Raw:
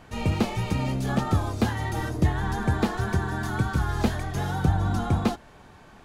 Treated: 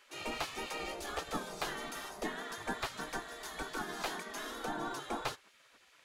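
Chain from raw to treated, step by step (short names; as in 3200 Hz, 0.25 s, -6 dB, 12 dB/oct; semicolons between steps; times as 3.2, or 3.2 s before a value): notch 550 Hz, Q 12; spectral gate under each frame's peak -15 dB weak; gain -3.5 dB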